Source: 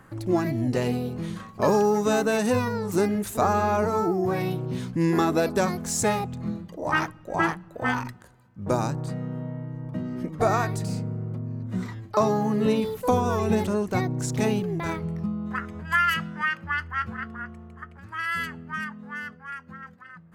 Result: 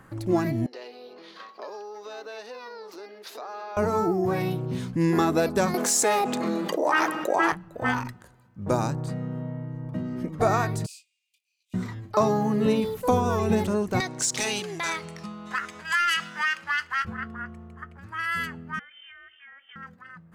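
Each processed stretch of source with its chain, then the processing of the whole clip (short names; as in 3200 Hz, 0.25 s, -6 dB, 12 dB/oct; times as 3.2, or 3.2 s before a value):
0.66–3.77 resonant high shelf 6200 Hz -10.5 dB, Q 3 + compressor 10:1, threshold -33 dBFS + HPF 390 Hz 24 dB/oct
5.74–7.52 HPF 300 Hz 24 dB/oct + fast leveller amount 70%
10.86–11.74 rippled Chebyshev high-pass 2400 Hz, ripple 3 dB + doubler 23 ms -8 dB
14–17.05 weighting filter ITU-R 468 + compressor 2:1, threshold -28 dBFS + sample leveller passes 1
18.79–19.76 HPF 420 Hz 6 dB/oct + compressor 16:1, threshold -44 dBFS + inverted band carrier 3300 Hz
whole clip: dry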